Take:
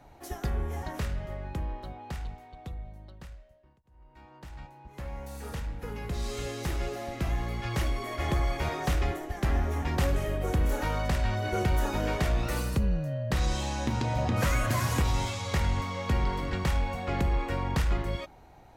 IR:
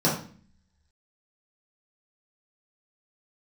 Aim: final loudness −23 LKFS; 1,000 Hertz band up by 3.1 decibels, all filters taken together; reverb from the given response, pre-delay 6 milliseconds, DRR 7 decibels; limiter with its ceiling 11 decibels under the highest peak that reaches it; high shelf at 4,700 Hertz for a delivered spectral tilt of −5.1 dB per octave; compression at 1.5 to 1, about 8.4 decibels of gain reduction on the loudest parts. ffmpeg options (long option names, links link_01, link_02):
-filter_complex "[0:a]equalizer=frequency=1000:width_type=o:gain=3.5,highshelf=frequency=4700:gain=9,acompressor=threshold=-46dB:ratio=1.5,alimiter=level_in=9.5dB:limit=-24dB:level=0:latency=1,volume=-9.5dB,asplit=2[link_01][link_02];[1:a]atrim=start_sample=2205,adelay=6[link_03];[link_02][link_03]afir=irnorm=-1:irlink=0,volume=-21.5dB[link_04];[link_01][link_04]amix=inputs=2:normalize=0,volume=18.5dB"